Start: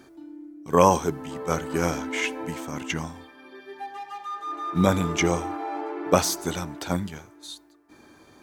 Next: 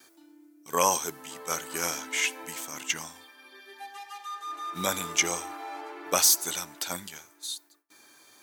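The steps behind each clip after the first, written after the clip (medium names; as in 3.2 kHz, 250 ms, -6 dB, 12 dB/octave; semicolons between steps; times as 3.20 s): gate with hold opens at -47 dBFS; tilt EQ +4.5 dB/octave; trim -5.5 dB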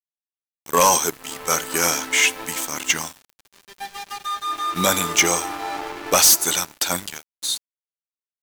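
waveshaping leveller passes 3; small samples zeroed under -39.5 dBFS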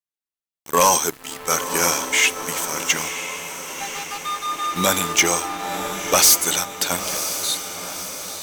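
echo that smears into a reverb 1002 ms, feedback 56%, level -9.5 dB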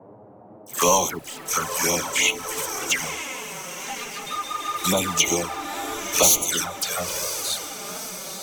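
phase dispersion lows, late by 92 ms, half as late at 1.5 kHz; band noise 110–790 Hz -44 dBFS; touch-sensitive flanger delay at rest 11.7 ms, full sweep at -14.5 dBFS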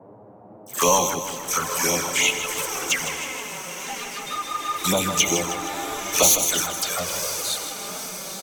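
feedback delay 157 ms, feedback 58%, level -10 dB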